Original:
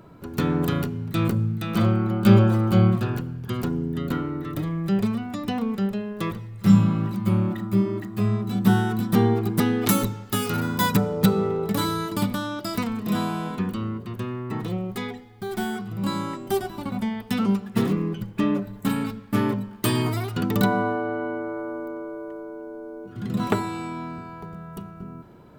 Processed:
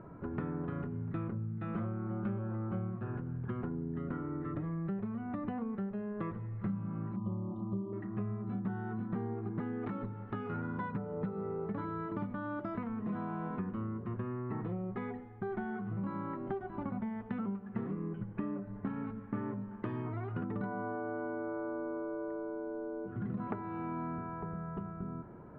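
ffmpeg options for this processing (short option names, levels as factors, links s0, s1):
-filter_complex "[0:a]asettb=1/sr,asplit=3[s0][s1][s2];[s0]atrim=end=7.164[s3];[s1]atrim=start=7.16:end=7.93,asetpts=PTS-STARTPTS,afade=t=in:d=0.004:c=qsin,afade=t=out:st=0.766:d=0.004:c=qsin,asuperstop=centerf=1900:order=20:qfactor=1.1[s4];[s2]atrim=start=7.926[s5];[s3][s4]acrossfade=d=0.004:c1=hsin:c2=qsin[s6];[s6][s5]acrossfade=d=0.004:c1=qsin:c2=hsin,acompressor=threshold=0.0251:ratio=10,lowpass=f=1800:w=0.5412,lowpass=f=1800:w=1.3066,volume=0.794"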